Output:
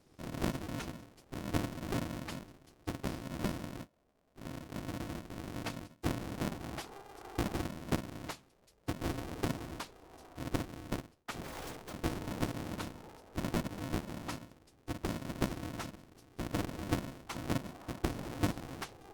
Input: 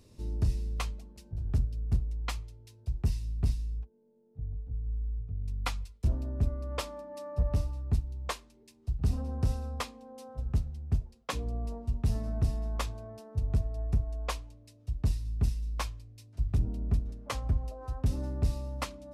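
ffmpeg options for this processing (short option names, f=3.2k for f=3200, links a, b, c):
-filter_complex "[0:a]asettb=1/sr,asplit=3[a][b][c];[a]atrim=end=11.444[d];[b]atrim=start=11.44:end=11.93,asetpts=PTS-STARTPTS,afade=t=in:d=0.004:c=qsin,afade=t=out:st=0.486:d=0.004:c=qsin,aeval=exprs='(mod(39.8*val(0)+1,2)-1)/39.8':c=same[e];[c]atrim=start=11.926[f];[d][e]acrossfade=d=0.004:c1=hsin:c2=qsin[g];[g][f]acrossfade=d=0.004:c1=qsin:c2=hsin,afftfilt=real='hypot(re,im)*cos(2*PI*random(0))':imag='hypot(re,im)*sin(2*PI*random(1))':win_size=512:overlap=0.75,aeval=exprs='val(0)*sgn(sin(2*PI*200*n/s))':c=same,volume=-1.5dB"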